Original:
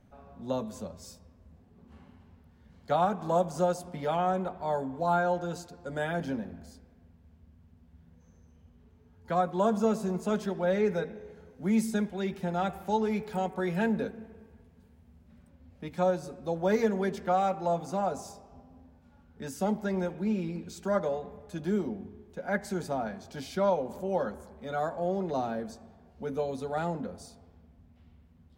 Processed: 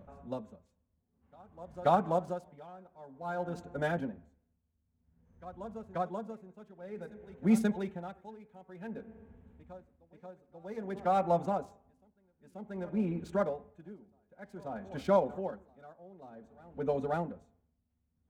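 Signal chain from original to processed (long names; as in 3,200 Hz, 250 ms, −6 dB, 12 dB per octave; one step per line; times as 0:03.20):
adaptive Wiener filter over 9 samples
phase-vocoder stretch with locked phases 0.64×
on a send: backwards echo 534 ms −18 dB
on the sum: tremolo with a sine in dB 0.53 Hz, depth 24 dB
level +1.5 dB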